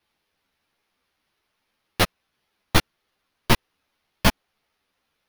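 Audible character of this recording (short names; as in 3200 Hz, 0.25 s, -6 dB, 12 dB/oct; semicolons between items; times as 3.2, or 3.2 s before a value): aliases and images of a low sample rate 7700 Hz, jitter 0%; a shimmering, thickened sound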